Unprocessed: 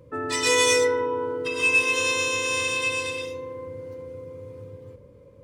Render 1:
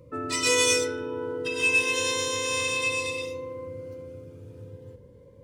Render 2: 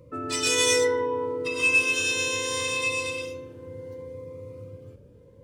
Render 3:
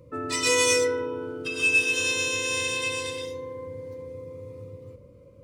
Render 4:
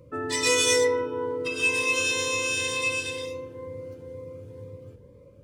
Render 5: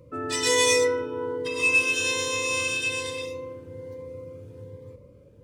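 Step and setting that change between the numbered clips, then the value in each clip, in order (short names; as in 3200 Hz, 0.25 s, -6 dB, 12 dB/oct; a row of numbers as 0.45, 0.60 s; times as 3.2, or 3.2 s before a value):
cascading phaser, rate: 0.31, 0.67, 0.21, 2.1, 1.2 Hz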